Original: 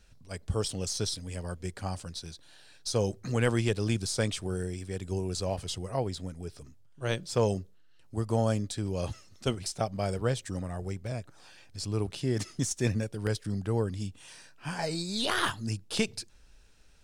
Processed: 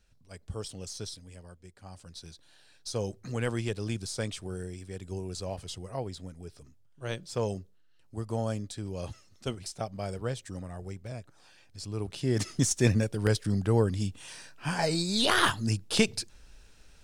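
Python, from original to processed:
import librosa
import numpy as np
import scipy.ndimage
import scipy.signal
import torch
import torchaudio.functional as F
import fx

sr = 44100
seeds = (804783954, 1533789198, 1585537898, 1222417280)

y = fx.gain(x, sr, db=fx.line((1.07, -7.5), (1.74, -16.0), (2.23, -4.5), (11.95, -4.5), (12.48, 4.5)))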